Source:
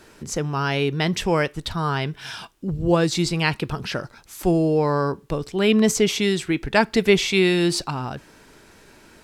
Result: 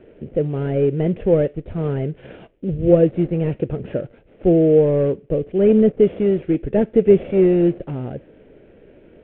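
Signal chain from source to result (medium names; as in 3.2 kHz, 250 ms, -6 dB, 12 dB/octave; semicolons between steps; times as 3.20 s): CVSD coder 16 kbps; resonant low shelf 730 Hz +10.5 dB, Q 3; trim -8 dB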